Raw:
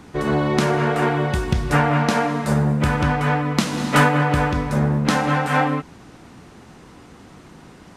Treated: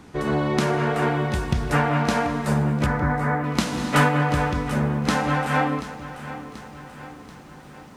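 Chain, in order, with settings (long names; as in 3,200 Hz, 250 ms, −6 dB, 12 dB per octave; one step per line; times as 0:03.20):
0:02.86–0:03.44: Butterworth low-pass 2,200 Hz 96 dB per octave
feedback echo at a low word length 734 ms, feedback 55%, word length 8 bits, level −14 dB
level −3 dB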